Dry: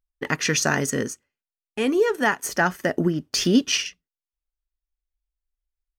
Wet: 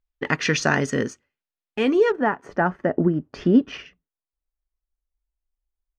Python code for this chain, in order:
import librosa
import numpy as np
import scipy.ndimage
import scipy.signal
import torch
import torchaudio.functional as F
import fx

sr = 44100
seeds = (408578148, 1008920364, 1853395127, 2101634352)

y = fx.lowpass(x, sr, hz=fx.steps((0.0, 4000.0), (2.12, 1200.0)), slope=12)
y = F.gain(torch.from_numpy(y), 2.0).numpy()